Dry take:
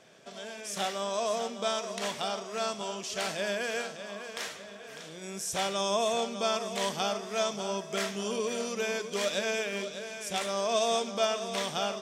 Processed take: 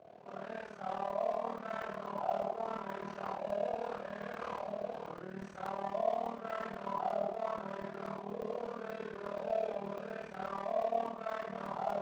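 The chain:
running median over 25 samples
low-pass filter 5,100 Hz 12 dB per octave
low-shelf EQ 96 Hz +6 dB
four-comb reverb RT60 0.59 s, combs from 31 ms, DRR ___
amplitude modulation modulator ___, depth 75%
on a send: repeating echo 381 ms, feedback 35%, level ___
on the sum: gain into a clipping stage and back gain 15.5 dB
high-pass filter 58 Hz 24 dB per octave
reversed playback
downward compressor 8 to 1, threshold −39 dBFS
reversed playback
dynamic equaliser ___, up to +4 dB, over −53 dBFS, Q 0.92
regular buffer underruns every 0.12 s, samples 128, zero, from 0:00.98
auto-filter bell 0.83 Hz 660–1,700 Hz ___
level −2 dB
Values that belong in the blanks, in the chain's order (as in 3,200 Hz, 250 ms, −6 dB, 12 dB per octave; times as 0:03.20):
−5.5 dB, 38 Hz, −22 dB, 910 Hz, +11 dB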